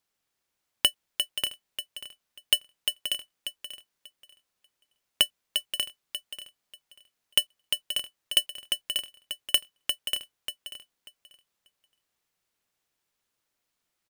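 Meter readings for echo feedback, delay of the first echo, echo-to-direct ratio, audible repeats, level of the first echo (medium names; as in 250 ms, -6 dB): 18%, 589 ms, -7.5 dB, 2, -7.5 dB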